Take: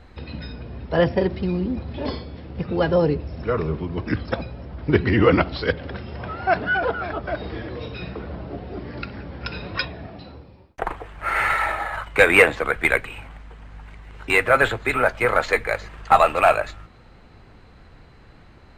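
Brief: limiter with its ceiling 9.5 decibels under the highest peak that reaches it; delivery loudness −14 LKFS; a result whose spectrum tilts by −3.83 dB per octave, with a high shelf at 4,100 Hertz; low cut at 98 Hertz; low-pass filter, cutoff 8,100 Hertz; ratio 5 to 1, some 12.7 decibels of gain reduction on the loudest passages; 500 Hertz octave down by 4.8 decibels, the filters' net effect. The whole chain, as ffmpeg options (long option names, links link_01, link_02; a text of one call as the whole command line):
ffmpeg -i in.wav -af "highpass=98,lowpass=8100,equalizer=frequency=500:width_type=o:gain=-6,highshelf=frequency=4100:gain=5.5,acompressor=threshold=-24dB:ratio=5,volume=17dB,alimiter=limit=-0.5dB:level=0:latency=1" out.wav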